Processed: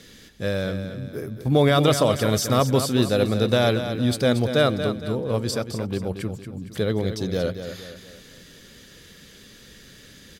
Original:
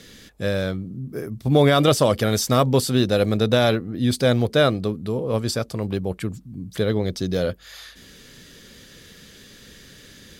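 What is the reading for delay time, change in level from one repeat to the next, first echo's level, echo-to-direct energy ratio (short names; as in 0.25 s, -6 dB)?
0.231 s, -7.5 dB, -9.5 dB, -8.5 dB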